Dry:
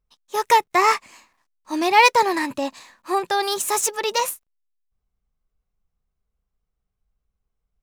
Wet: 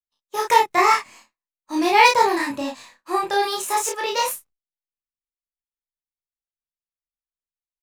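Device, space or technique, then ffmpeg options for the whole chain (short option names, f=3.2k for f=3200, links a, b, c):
double-tracked vocal: -filter_complex "[0:a]agate=range=-33dB:threshold=-42dB:ratio=3:detection=peak,asettb=1/sr,asplit=3[a][b][c];[a]atrim=end=3.454[d];[b]atrim=start=3.45:end=4.18,asetpts=PTS-STARTPTS,afade=t=in:d=0.004:c=qsin,afade=t=out:st=0.726:d=0.004:c=qsin,bass=f=250:g=-7,treble=f=4k:g=-4[e];[c]atrim=start=4.176[f];[d][e]acrossfade=d=0.004:c1=hsin:c2=qsin[g];[g][f]acrossfade=d=0.004:c1=qsin:c2=hsin,asplit=2[h][i];[i]adelay=32,volume=-2.5dB[j];[h][j]amix=inputs=2:normalize=0,flanger=delay=19.5:depth=4.4:speed=0.5,volume=1.5dB"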